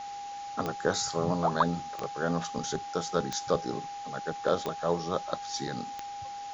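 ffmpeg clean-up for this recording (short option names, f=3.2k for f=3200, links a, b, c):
-af "adeclick=t=4,bandreject=f=810:w=30,afftdn=nr=30:nf=-40"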